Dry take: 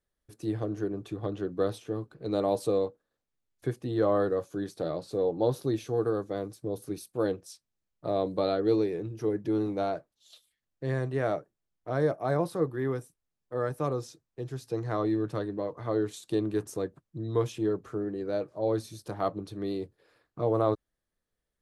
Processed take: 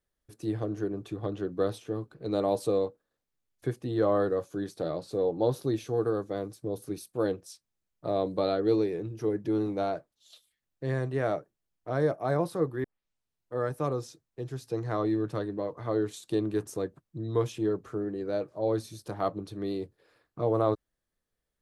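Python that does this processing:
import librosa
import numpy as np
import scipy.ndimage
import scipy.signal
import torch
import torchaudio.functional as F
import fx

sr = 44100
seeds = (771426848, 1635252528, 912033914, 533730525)

y = fx.edit(x, sr, fx.tape_start(start_s=12.84, length_s=0.7), tone=tone)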